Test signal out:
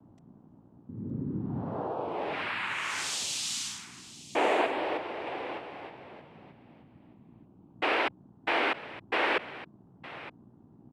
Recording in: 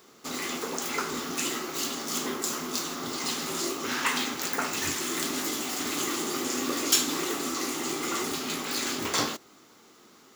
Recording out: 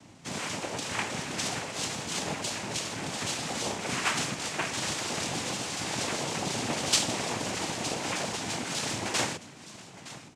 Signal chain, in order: hum 60 Hz, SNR 16 dB; delay 915 ms -16 dB; noise-vocoded speech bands 4; trim -1 dB

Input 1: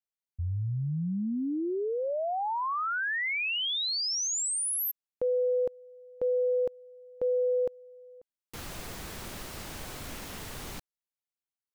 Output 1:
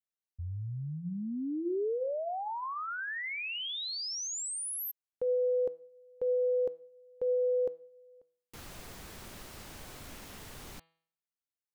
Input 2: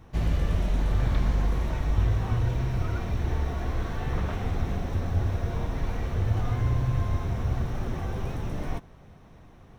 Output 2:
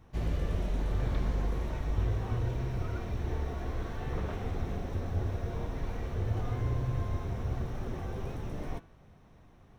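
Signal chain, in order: de-hum 163.9 Hz, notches 28; dynamic bell 420 Hz, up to +6 dB, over -41 dBFS, Q 1.3; trim -6.5 dB

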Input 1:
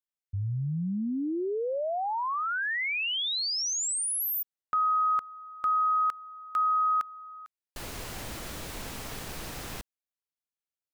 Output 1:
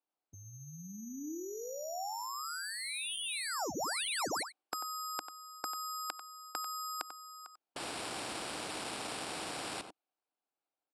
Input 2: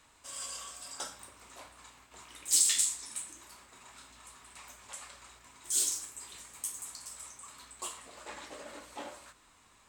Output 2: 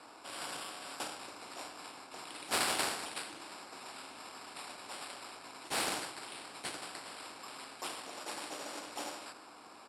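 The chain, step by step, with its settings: echo from a far wall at 16 m, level -14 dB; level-controlled noise filter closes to 2.4 kHz, open at -30 dBFS; sample-and-hold 7×; cabinet simulation 290–10000 Hz, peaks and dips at 310 Hz +8 dB, 760 Hz +8 dB, 1.9 kHz -10 dB, 3.4 kHz -4 dB; spectrum-flattening compressor 2:1; trim -3 dB

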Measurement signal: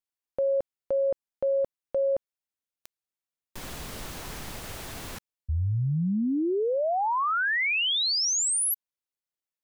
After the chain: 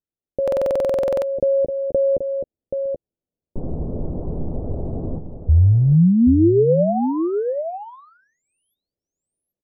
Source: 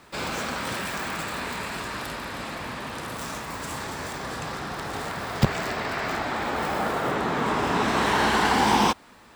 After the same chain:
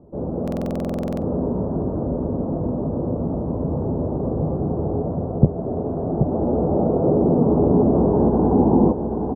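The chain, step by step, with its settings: doubling 12 ms -12 dB; on a send: delay 779 ms -8.5 dB; on the sum: level rider gain up to 7.5 dB; inverse Chebyshev low-pass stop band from 2 kHz, stop band 60 dB; in parallel at -0.5 dB: compression, threshold -29 dBFS; on the sum: bass shelf 400 Hz +3.5 dB; buffer glitch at 0.43 s, samples 2048, times 16

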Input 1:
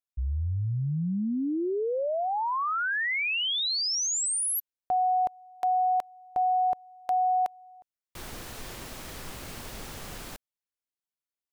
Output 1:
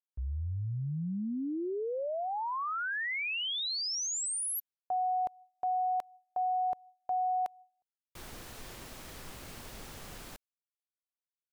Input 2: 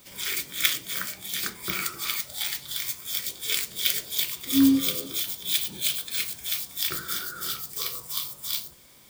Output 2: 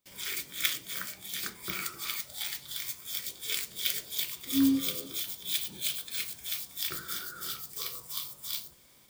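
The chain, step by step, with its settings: gate with hold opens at -43 dBFS, hold 119 ms, range -23 dB; trim -6 dB

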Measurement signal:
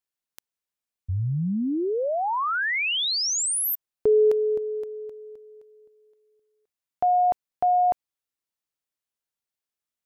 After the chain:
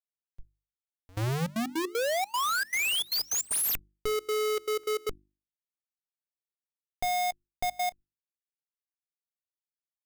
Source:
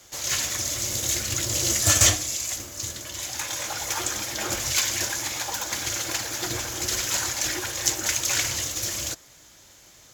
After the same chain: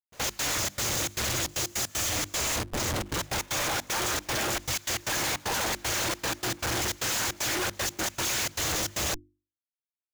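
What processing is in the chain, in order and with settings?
Schmitt trigger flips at -33 dBFS; trance gate "x.x.xxx.xxx.xxx." 154 bpm -24 dB; hum notches 50/100/150/200/250/300/350 Hz; trim -1 dB

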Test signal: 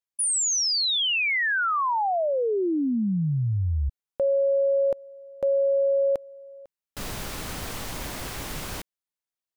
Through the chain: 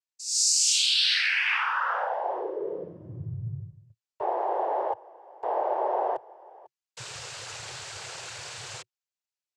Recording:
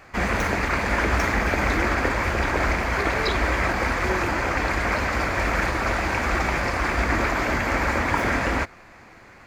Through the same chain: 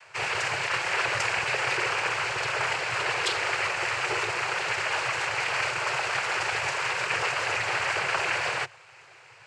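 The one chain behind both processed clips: noise-vocoded speech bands 8; FFT filter 130 Hz 0 dB, 250 Hz -30 dB, 370 Hz -1 dB, 4.2 kHz +8 dB; trim -6.5 dB

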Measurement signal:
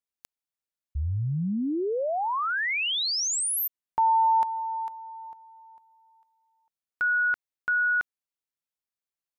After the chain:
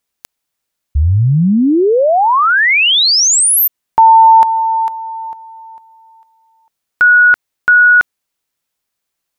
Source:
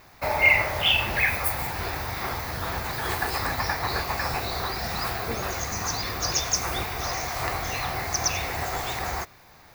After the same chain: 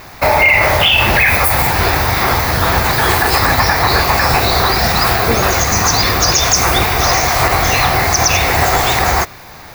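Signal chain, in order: loudness maximiser +18 dB; trim -1 dB

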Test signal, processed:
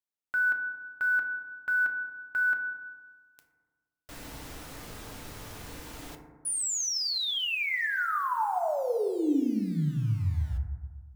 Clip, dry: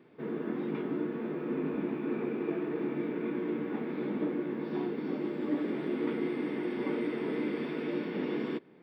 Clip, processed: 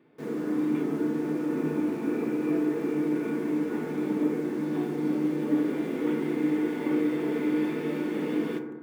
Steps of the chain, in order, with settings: in parallel at -3 dB: word length cut 8-bit, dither none; on the sum: FDN reverb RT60 1.4 s, low-frequency decay 1.2×, high-frequency decay 0.25×, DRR 3 dB; trim -3.5 dB

